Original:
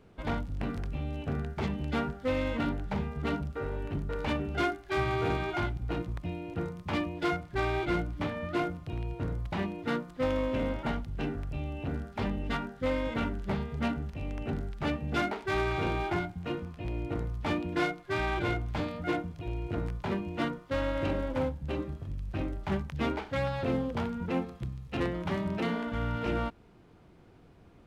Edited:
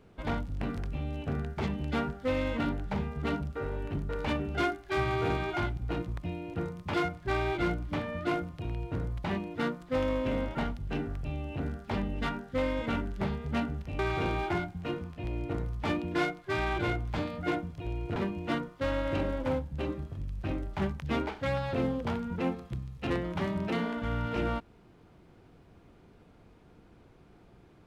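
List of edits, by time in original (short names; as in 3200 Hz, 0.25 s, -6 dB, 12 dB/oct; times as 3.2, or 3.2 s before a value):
6.94–7.22 cut
14.27–15.6 cut
19.77–20.06 cut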